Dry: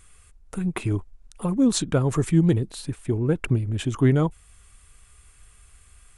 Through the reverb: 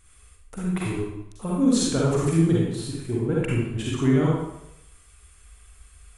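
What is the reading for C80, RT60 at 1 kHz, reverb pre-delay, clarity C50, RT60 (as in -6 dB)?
2.0 dB, 0.80 s, 38 ms, -3.0 dB, 0.85 s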